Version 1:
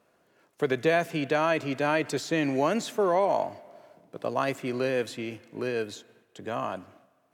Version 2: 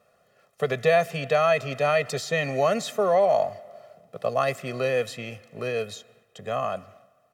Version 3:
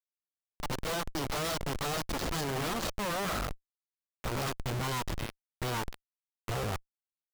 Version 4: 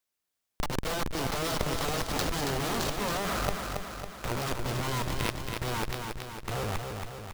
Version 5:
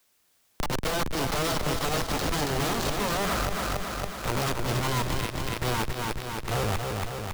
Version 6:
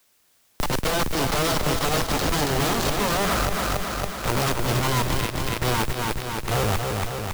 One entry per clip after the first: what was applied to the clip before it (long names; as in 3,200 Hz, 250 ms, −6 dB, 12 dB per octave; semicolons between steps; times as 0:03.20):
comb filter 1.6 ms, depth 97%
harmonic generator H 3 −16 dB, 7 −15 dB, 8 −7 dB, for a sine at −9 dBFS; phaser swept by the level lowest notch 270 Hz, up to 2,300 Hz, full sweep at −22.5 dBFS; comparator with hysteresis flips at −33.5 dBFS; level −7 dB
compressor whose output falls as the input rises −38 dBFS, ratio −1; on a send: repeating echo 276 ms, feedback 59%, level −5 dB; on the sum: level +6.5 dB
brickwall limiter −25.5 dBFS, peak gain reduction 10.5 dB; multiband upward and downward compressor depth 40%; level +5 dB
noise that follows the level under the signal 17 dB; level +4.5 dB